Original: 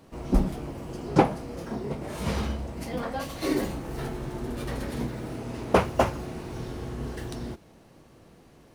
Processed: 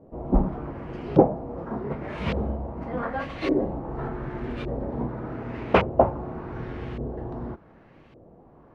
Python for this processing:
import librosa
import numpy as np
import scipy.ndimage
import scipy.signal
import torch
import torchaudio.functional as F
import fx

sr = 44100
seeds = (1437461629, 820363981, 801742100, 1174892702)

y = fx.filter_lfo_lowpass(x, sr, shape='saw_up', hz=0.86, low_hz=540.0, high_hz=2900.0, q=1.7)
y = y * librosa.db_to_amplitude(1.0)